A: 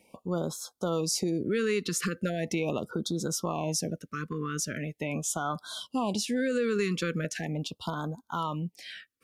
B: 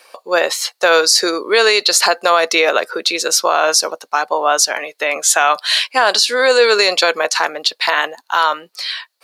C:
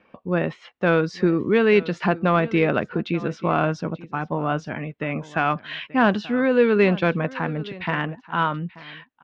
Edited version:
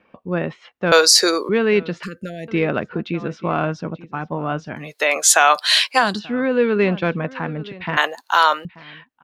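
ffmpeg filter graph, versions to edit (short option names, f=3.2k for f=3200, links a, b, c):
-filter_complex "[1:a]asplit=3[a][b][c];[2:a]asplit=5[d][e][f][g][h];[d]atrim=end=0.922[i];[a]atrim=start=0.918:end=1.492[j];[e]atrim=start=1.488:end=2.032[k];[0:a]atrim=start=2.028:end=2.482[l];[f]atrim=start=2.478:end=4.98[m];[b]atrim=start=4.74:end=6.2[n];[g]atrim=start=5.96:end=7.972[o];[c]atrim=start=7.968:end=8.652[p];[h]atrim=start=8.648[q];[i][j]acrossfade=d=0.004:c1=hsin:c2=hsin[r];[r][k]acrossfade=d=0.004:c1=hsin:c2=hsin[s];[s][l]acrossfade=d=0.004:c1=hsin:c2=hsin[t];[t][m]acrossfade=d=0.004:c1=hsin:c2=hsin[u];[u][n]acrossfade=d=0.24:c1=tri:c2=tri[v];[v][o]acrossfade=d=0.24:c1=tri:c2=tri[w];[w][p]acrossfade=d=0.004:c1=hsin:c2=hsin[x];[x][q]acrossfade=d=0.004:c1=hsin:c2=hsin"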